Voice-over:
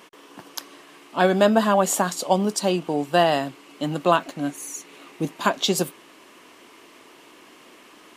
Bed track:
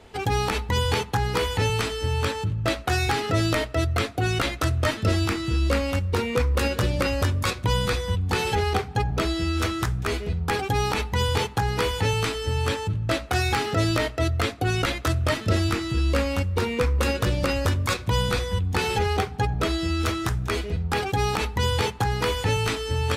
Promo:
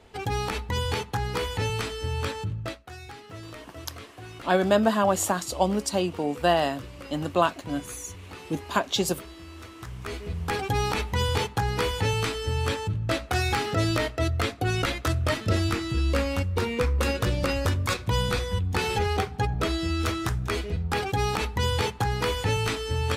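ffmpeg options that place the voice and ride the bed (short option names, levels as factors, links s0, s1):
-filter_complex "[0:a]adelay=3300,volume=0.668[s0];[1:a]volume=4.22,afade=t=out:st=2.54:d=0.25:silence=0.188365,afade=t=in:st=9.74:d=0.94:silence=0.141254[s1];[s0][s1]amix=inputs=2:normalize=0"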